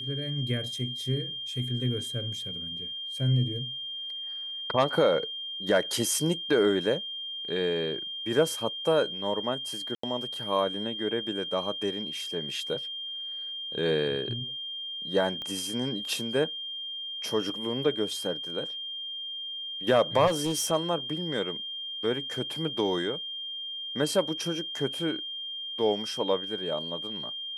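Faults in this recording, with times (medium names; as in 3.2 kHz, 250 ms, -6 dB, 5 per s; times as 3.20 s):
whine 3.2 kHz -34 dBFS
9.95–10.03 s: dropout 84 ms
15.42 s: pop -25 dBFS
20.26–20.72 s: clipped -22.5 dBFS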